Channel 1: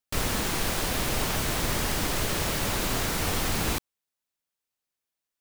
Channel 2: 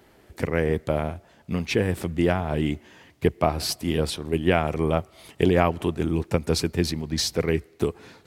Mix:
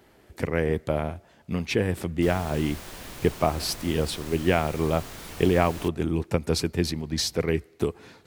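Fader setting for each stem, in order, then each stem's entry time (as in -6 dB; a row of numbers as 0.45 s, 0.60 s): -13.0 dB, -1.5 dB; 2.10 s, 0.00 s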